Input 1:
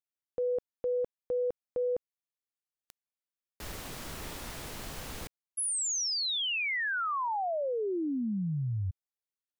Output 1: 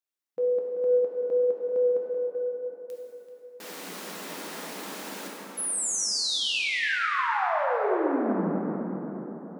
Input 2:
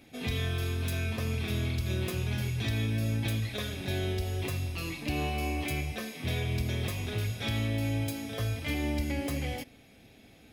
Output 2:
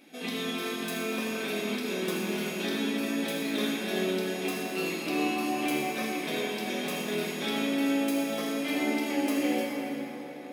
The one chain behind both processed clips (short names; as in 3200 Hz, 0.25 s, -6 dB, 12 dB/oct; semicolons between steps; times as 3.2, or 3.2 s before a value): brick-wall FIR high-pass 170 Hz; on a send: tape echo 0.386 s, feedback 49%, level -7 dB, low-pass 2000 Hz; on the sum: plate-style reverb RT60 4 s, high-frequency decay 0.5×, DRR -3.5 dB